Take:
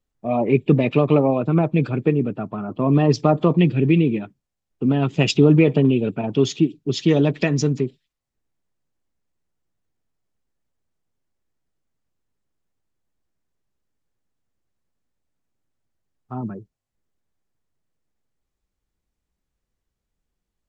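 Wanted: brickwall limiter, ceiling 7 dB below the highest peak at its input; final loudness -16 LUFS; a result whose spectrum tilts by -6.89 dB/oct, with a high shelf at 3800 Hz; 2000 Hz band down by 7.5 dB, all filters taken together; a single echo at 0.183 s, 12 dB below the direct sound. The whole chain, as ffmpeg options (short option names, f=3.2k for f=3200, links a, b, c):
-af "equalizer=f=2k:t=o:g=-7,highshelf=f=3.8k:g=-8.5,alimiter=limit=-10dB:level=0:latency=1,aecho=1:1:183:0.251,volume=5.5dB"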